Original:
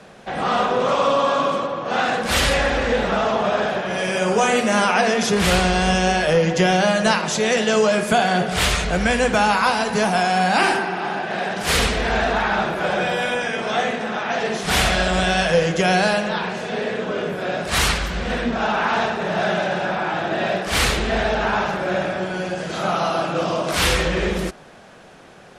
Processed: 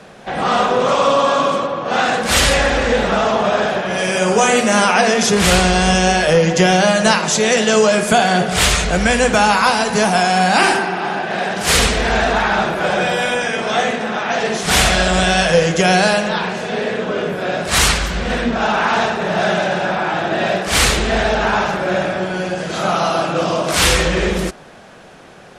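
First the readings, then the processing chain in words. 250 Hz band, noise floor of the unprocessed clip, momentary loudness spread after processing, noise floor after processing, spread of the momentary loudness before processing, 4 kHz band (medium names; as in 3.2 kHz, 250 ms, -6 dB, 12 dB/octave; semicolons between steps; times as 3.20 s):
+4.0 dB, -44 dBFS, 8 LU, -40 dBFS, 7 LU, +5.5 dB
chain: dynamic bell 7.6 kHz, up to +5 dB, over -40 dBFS, Q 1; pre-echo 60 ms -22 dB; trim +4 dB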